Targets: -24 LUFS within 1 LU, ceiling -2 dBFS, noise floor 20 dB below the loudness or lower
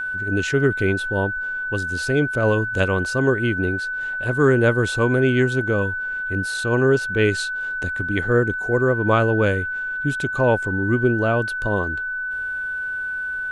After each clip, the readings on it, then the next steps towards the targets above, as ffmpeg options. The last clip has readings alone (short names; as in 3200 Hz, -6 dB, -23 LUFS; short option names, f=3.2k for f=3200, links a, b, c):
steady tone 1500 Hz; tone level -24 dBFS; loudness -21.0 LUFS; peak -5.5 dBFS; loudness target -24.0 LUFS
-> -af "bandreject=f=1.5k:w=30"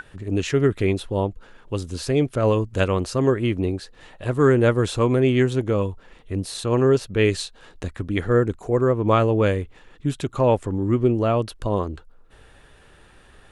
steady tone none; loudness -22.0 LUFS; peak -6.0 dBFS; loudness target -24.0 LUFS
-> -af "volume=-2dB"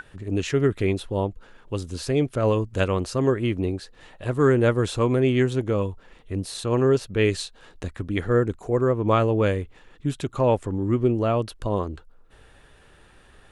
loudness -24.0 LUFS; peak -8.0 dBFS; noise floor -53 dBFS